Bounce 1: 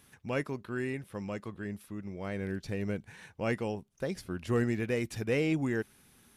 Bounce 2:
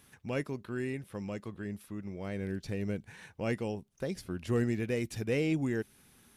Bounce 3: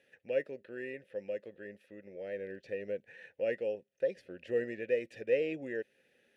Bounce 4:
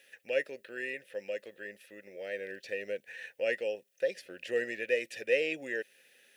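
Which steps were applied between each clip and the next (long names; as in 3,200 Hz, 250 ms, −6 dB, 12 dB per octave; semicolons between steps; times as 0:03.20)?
dynamic equaliser 1,200 Hz, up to −5 dB, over −47 dBFS, Q 0.74
formant filter e; level +8.5 dB
spectral tilt +4 dB per octave; level +4.5 dB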